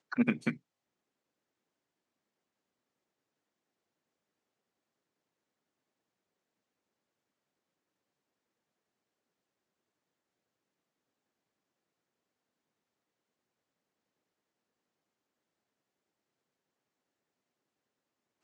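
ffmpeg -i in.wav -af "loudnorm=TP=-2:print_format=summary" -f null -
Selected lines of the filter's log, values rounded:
Input Integrated:    -32.6 LUFS
Input True Peak:     -14.6 dBTP
Input LRA:             0.0 LU
Input Threshold:     -43.4 LUFS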